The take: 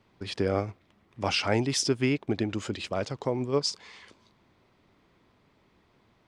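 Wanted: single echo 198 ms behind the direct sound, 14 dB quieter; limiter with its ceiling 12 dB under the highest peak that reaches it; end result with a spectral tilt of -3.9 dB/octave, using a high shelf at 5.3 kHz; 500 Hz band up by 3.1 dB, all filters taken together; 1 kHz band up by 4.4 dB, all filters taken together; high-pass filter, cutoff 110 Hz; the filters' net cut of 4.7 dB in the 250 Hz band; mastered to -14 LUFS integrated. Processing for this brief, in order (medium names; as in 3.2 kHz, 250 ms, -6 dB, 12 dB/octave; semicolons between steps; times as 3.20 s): high-pass 110 Hz; peaking EQ 250 Hz -8.5 dB; peaking EQ 500 Hz +5.5 dB; peaking EQ 1 kHz +4.5 dB; treble shelf 5.3 kHz -3 dB; peak limiter -21.5 dBFS; delay 198 ms -14 dB; trim +19 dB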